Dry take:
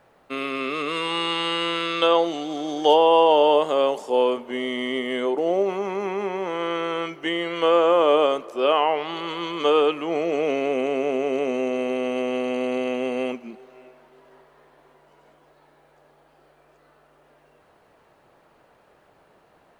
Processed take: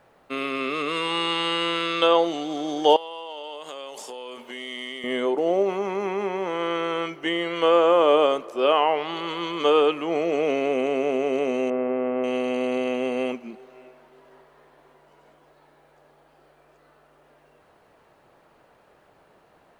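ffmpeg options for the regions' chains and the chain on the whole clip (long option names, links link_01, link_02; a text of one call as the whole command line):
ffmpeg -i in.wav -filter_complex "[0:a]asettb=1/sr,asplit=3[link_01][link_02][link_03];[link_01]atrim=end=2.964[link_04];[link_02]atrim=start=2.96:end=5.04,asetpts=PTS-STARTPTS,afade=type=in:duration=0.004:curve=qsin,afade=type=out:start_time=2.076:duration=0.004:curve=qsin,acompressor=threshold=-28dB:ratio=16:attack=3.2:release=140:knee=1:detection=peak,tiltshelf=frequency=1500:gain=-7.5[link_05];[link_03]atrim=start=5.036[link_06];[link_04][link_05]acrossfade=duration=0.004:curve1=hsin:curve2=qsin[link_07];[link_07][link_06]acrossfade=duration=0.004:curve1=qsin:curve2=hsin,asettb=1/sr,asplit=3[link_08][link_09][link_10];[link_08]atrim=end=11.704[link_11];[link_09]atrim=start=11.7:end=12.24,asetpts=PTS-STARTPTS,afade=type=in:duration=0.004:curve=qsin,afade=type=out:start_time=0.536:duration=0.004:curve=qsin,lowpass=frequency=1700:width=0.5412,lowpass=frequency=1700:width=1.3066,aemphasis=mode=production:type=75kf[link_12];[link_10]atrim=start=12.236[link_13];[link_11][link_12]acrossfade=duration=0.004:curve1=hsin:curve2=qsin[link_14];[link_14][link_13]acrossfade=duration=0.004:curve1=qsin:curve2=hsin" out.wav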